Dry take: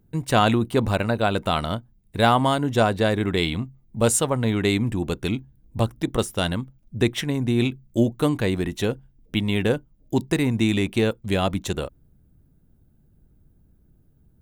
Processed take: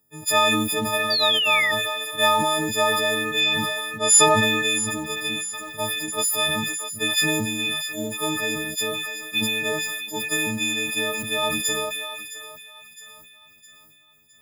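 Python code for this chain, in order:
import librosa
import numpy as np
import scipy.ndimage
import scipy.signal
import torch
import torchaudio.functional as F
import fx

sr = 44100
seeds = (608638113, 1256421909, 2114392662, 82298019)

p1 = fx.freq_snap(x, sr, grid_st=6)
p2 = fx.highpass(p1, sr, hz=660.0, slope=6)
p3 = fx.quant_float(p2, sr, bits=2)
p4 = p2 + (p3 * librosa.db_to_amplitude(-3.5))
p5 = fx.lowpass(p4, sr, hz=8800.0, slope=12, at=(3.4, 4.43))
p6 = p5 + fx.echo_thinned(p5, sr, ms=662, feedback_pct=51, hz=870.0, wet_db=-14, dry=0)
p7 = fx.spec_paint(p6, sr, seeds[0], shape='fall', start_s=1.1, length_s=0.62, low_hz=1800.0, high_hz=4800.0, level_db=-14.0)
p8 = fx.sustainer(p7, sr, db_per_s=25.0)
y = p8 * librosa.db_to_amplitude(-8.0)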